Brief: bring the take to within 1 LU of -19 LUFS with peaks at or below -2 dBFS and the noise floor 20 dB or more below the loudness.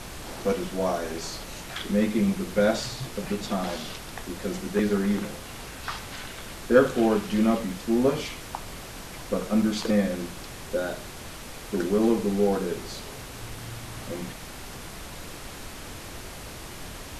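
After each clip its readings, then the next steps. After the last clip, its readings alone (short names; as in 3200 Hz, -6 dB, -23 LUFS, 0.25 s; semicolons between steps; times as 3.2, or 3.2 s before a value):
dropouts 2; longest dropout 1.3 ms; noise floor -40 dBFS; noise floor target -48 dBFS; loudness -27.5 LUFS; peak -5.0 dBFS; loudness target -19.0 LUFS
-> interpolate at 7.69/9.62, 1.3 ms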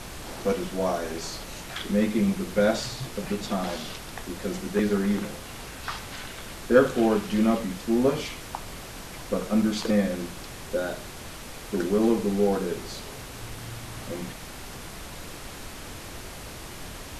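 dropouts 0; noise floor -40 dBFS; noise floor target -48 dBFS
-> noise print and reduce 8 dB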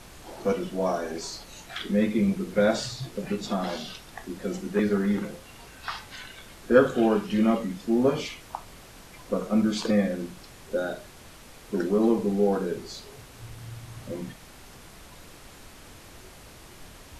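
noise floor -48 dBFS; loudness -27.0 LUFS; peak -5.0 dBFS; loudness target -19.0 LUFS
-> gain +8 dB; limiter -2 dBFS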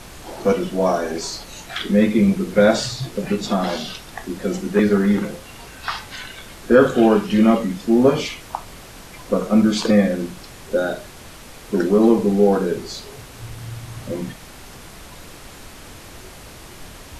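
loudness -19.0 LUFS; peak -2.0 dBFS; noise floor -40 dBFS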